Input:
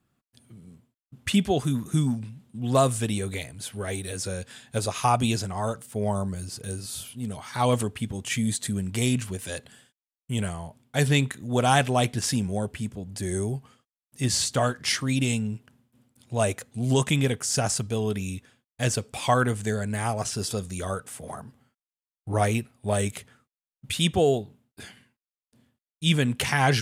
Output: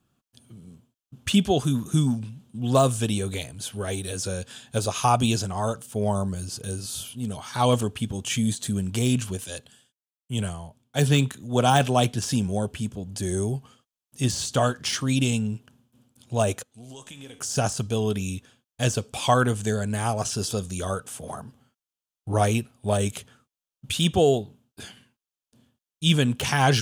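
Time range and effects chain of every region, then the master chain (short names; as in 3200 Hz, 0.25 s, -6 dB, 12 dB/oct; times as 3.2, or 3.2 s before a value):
9.44–12.23 HPF 41 Hz + three-band expander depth 40%
16.63–17.39 low shelf 310 Hz -10.5 dB + compressor 5:1, threshold -32 dBFS + resonator 91 Hz, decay 1.1 s, mix 70%
whole clip: de-esser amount 55%; thirty-one-band EQ 2000 Hz -8 dB, 3150 Hz +4 dB, 6300 Hz +4 dB; gain +2 dB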